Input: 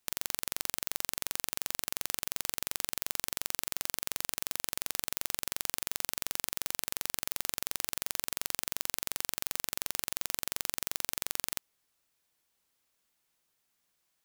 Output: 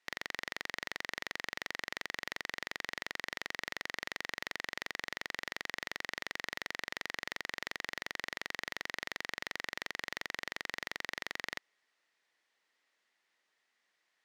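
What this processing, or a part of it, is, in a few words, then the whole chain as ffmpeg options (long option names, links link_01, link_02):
intercom: -af "highpass=330,lowpass=4600,equalizer=frequency=1900:width_type=o:width=0.28:gain=11,asoftclip=type=tanh:threshold=-20.5dB,volume=2dB"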